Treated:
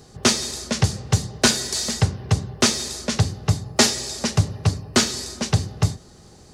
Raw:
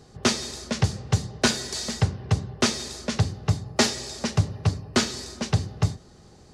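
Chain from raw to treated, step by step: treble shelf 7.1 kHz +9.5 dB; trim +3 dB

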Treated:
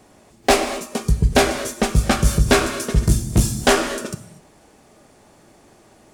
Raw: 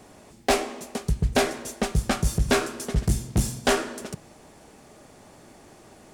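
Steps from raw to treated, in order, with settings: gated-style reverb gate 270 ms flat, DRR 8.5 dB; spectral noise reduction 8 dB; trim +6.5 dB

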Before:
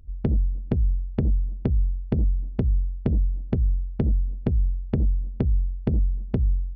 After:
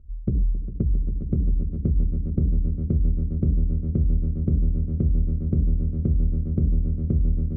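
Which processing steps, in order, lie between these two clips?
boxcar filter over 45 samples; echo with a slow build-up 120 ms, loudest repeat 8, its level -10.5 dB; wide varispeed 0.893×

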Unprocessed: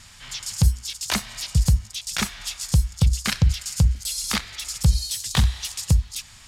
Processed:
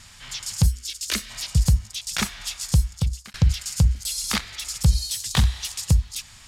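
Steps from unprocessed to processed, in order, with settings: 0.66–1.30 s: static phaser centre 340 Hz, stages 4; 2.81–3.34 s: fade out linear

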